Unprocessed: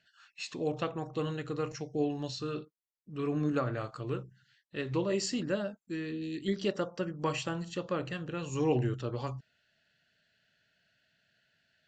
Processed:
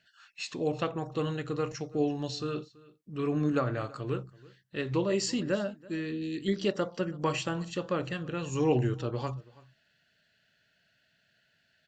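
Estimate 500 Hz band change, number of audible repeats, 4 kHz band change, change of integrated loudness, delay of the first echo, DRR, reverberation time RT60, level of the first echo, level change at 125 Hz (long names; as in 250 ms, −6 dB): +2.5 dB, 1, +2.5 dB, +2.5 dB, 331 ms, no reverb audible, no reverb audible, −22.5 dB, +2.5 dB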